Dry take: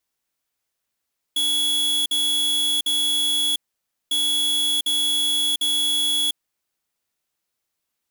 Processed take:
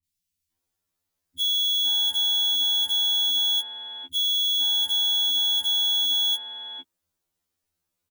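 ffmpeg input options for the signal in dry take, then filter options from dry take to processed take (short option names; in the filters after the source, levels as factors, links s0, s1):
-f lavfi -i "aevalsrc='0.0891*(2*lt(mod(3370*t,1),0.5)-1)*clip(min(mod(mod(t,2.75),0.75),0.7-mod(mod(t,2.75),0.75))/0.005,0,1)*lt(mod(t,2.75),2.25)':d=5.5:s=44100"
-filter_complex "[0:a]lowshelf=f=250:g=12,acrossover=split=210|2300[s0][s1][s2];[s2]adelay=40[s3];[s1]adelay=500[s4];[s0][s4][s3]amix=inputs=3:normalize=0,afftfilt=real='re*2*eq(mod(b,4),0)':imag='im*2*eq(mod(b,4),0)':win_size=2048:overlap=0.75"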